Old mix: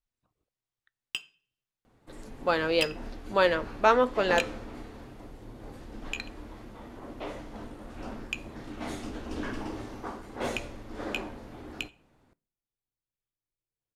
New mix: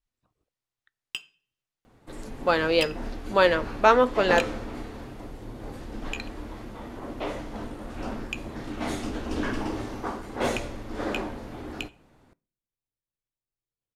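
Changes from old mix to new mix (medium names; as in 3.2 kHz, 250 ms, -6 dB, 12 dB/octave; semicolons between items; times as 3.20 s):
speech +3.5 dB; second sound +6.0 dB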